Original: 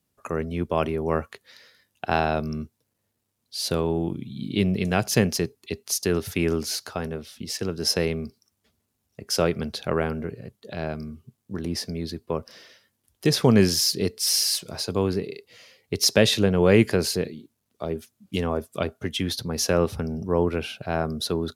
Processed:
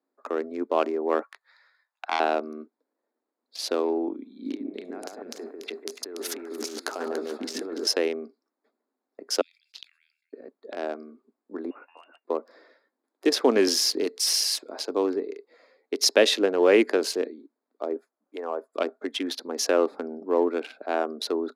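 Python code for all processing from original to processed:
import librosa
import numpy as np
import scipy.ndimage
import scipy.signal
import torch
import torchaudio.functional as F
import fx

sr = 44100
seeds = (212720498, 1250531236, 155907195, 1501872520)

y = fx.chain(x, sr, fx.highpass(hz=880.0, slope=24),
    fx.doppler_dist(depth_ms=0.15), at=(1.23, 2.2))
y = fx.chain(y, sr, fx.high_shelf(hz=4700.0, db=5.5),
    fx.over_compress(threshold_db=-33.0, ratio=-1.0),
    fx.echo_alternate(ms=144, hz=1600.0, feedback_pct=61, wet_db=-2.5), at=(4.45, 7.87))
y = fx.chain(y, sr, fx.steep_highpass(hz=2800.0, slope=48),
    fx.high_shelf(hz=6400.0, db=-9.5),
    fx.sustainer(db_per_s=94.0), at=(9.41, 10.33))
y = fx.chain(y, sr, fx.steep_highpass(hz=330.0, slope=96),
    fx.freq_invert(carrier_hz=3200), at=(11.7, 12.25))
y = fx.chain(y, sr, fx.block_float(bits=7),
    fx.band_squash(depth_pct=70), at=(13.67, 14.34))
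y = fx.chain(y, sr, fx.highpass(hz=540.0, slope=12),
    fx.peak_eq(hz=3500.0, db=-11.5, octaves=1.4), at=(17.96, 18.75))
y = fx.wiener(y, sr, points=15)
y = scipy.signal.sosfilt(scipy.signal.ellip(4, 1.0, 50, 270.0, 'highpass', fs=sr, output='sos'), y)
y = fx.high_shelf(y, sr, hz=12000.0, db=-11.0)
y = y * librosa.db_to_amplitude(1.5)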